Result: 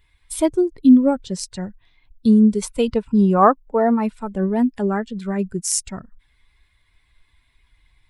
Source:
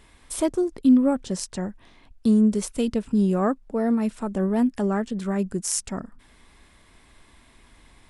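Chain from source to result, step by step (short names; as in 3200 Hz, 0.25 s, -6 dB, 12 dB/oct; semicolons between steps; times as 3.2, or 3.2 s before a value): per-bin expansion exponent 1.5; 2.62–4.14 bell 970 Hz +13 dB 1.2 oct; gain +6 dB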